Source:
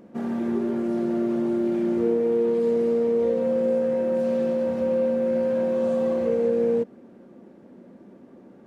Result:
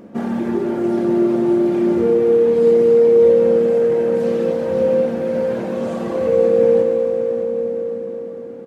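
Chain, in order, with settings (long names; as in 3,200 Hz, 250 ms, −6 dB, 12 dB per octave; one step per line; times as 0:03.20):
reverb reduction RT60 1.2 s
on a send: repeating echo 579 ms, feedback 50%, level −14 dB
on the sum: dense smooth reverb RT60 4.6 s, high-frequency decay 0.9×, DRR 0.5 dB
level +8 dB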